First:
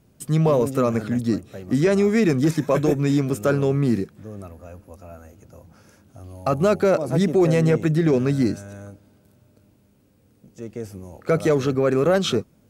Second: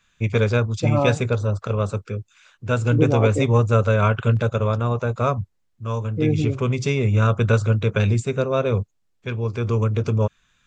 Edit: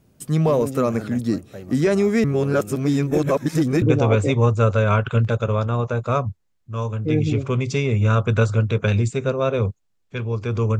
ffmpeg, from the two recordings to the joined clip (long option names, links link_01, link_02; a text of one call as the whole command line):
ffmpeg -i cue0.wav -i cue1.wav -filter_complex "[0:a]apad=whole_dur=10.79,atrim=end=10.79,asplit=2[link_01][link_02];[link_01]atrim=end=2.242[link_03];[link_02]atrim=start=2.238:end=3.822,asetpts=PTS-STARTPTS,areverse[link_04];[1:a]atrim=start=2.938:end=9.91[link_05];[link_03][link_04]acrossfade=duration=0.004:curve1=hsin:curve2=hsin[link_06];[link_06][link_05]acrossfade=duration=0.004:curve1=hsin:curve2=hsin" out.wav